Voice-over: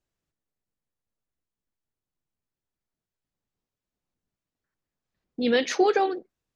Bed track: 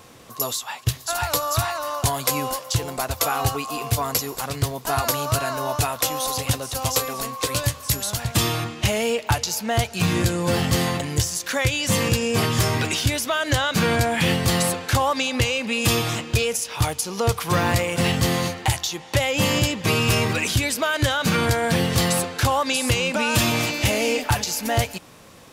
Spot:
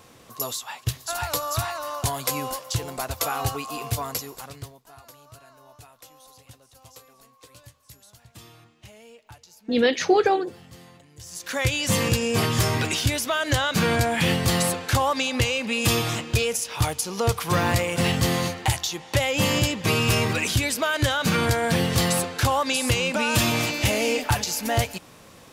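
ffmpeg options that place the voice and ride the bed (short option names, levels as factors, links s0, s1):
-filter_complex "[0:a]adelay=4300,volume=1.33[s0];[1:a]volume=10.6,afade=t=out:st=3.86:d=0.98:silence=0.0794328,afade=t=in:st=11.19:d=0.49:silence=0.0595662[s1];[s0][s1]amix=inputs=2:normalize=0"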